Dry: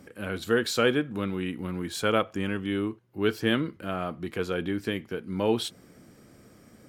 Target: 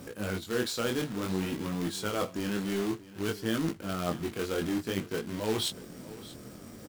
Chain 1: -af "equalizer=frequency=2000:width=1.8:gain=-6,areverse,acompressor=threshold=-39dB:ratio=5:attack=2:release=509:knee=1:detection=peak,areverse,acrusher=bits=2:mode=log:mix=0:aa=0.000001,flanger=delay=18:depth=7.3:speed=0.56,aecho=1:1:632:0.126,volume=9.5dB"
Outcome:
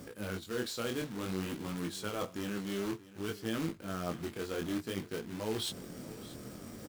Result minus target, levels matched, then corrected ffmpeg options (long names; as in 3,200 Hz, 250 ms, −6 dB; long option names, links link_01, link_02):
downward compressor: peak gain reduction +5.5 dB
-af "equalizer=frequency=2000:width=1.8:gain=-6,areverse,acompressor=threshold=-32dB:ratio=5:attack=2:release=509:knee=1:detection=peak,areverse,acrusher=bits=2:mode=log:mix=0:aa=0.000001,flanger=delay=18:depth=7.3:speed=0.56,aecho=1:1:632:0.126,volume=9.5dB"